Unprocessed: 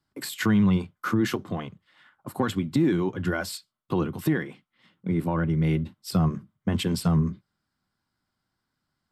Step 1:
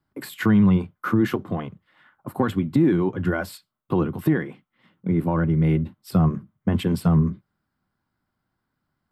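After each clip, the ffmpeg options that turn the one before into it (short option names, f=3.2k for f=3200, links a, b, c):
-af "equalizer=f=6.1k:w=0.55:g=-12.5,volume=4dB"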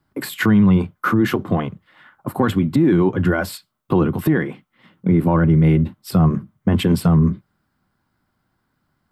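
-af "alimiter=limit=-15.5dB:level=0:latency=1:release=50,volume=8dB"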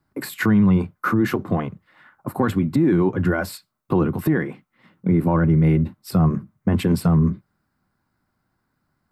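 -af "equalizer=f=3.2k:w=4.4:g=-7,volume=-2.5dB"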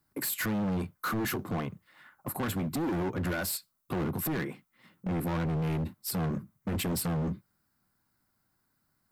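-af "crystalizer=i=3:c=0,asoftclip=type=hard:threshold=-21.5dB,volume=-7dB"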